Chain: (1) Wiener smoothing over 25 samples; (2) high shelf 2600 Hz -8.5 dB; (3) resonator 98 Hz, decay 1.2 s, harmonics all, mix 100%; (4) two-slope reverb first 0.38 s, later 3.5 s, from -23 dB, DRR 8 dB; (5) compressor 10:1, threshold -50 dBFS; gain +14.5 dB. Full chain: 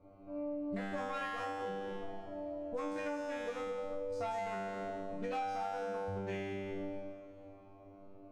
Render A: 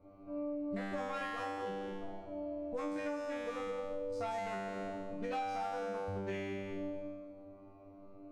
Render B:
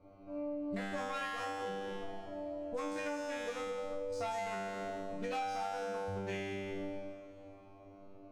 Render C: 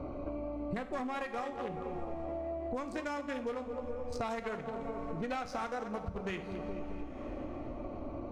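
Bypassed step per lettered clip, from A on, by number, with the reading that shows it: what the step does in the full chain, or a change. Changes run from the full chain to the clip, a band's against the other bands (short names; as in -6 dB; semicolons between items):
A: 4, momentary loudness spread change -3 LU; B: 2, 8 kHz band +7.0 dB; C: 3, 125 Hz band +3.0 dB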